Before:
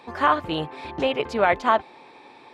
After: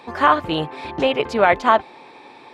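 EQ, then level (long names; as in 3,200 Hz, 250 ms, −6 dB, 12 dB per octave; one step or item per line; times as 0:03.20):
parametric band 76 Hz −3.5 dB 0.33 octaves
+4.5 dB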